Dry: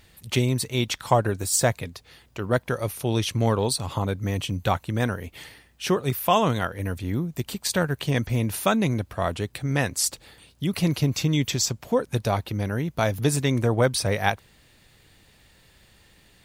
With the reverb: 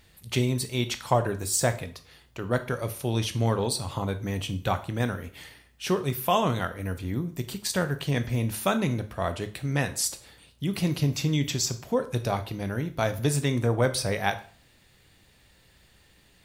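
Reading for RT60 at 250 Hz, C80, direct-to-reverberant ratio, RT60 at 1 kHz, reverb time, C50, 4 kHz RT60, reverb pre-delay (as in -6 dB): 0.45 s, 19.5 dB, 9.0 dB, 0.45 s, 0.45 s, 14.5 dB, 0.40 s, 7 ms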